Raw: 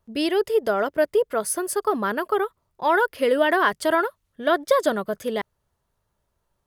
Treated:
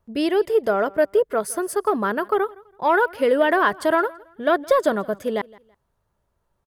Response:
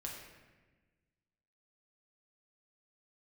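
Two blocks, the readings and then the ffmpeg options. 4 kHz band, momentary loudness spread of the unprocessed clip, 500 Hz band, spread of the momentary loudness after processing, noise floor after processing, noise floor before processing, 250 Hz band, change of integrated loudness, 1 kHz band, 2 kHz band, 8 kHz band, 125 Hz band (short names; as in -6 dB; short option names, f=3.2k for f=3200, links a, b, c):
-2.5 dB, 8 LU, +2.0 dB, 8 LU, -73 dBFS, -75 dBFS, +2.0 dB, +1.5 dB, +1.5 dB, +0.5 dB, -3.5 dB, n/a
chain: -filter_complex "[0:a]acrossover=split=2000[a][b];[a]acontrast=46[c];[c][b]amix=inputs=2:normalize=0,aecho=1:1:165|330:0.0708|0.0191,volume=-3.5dB"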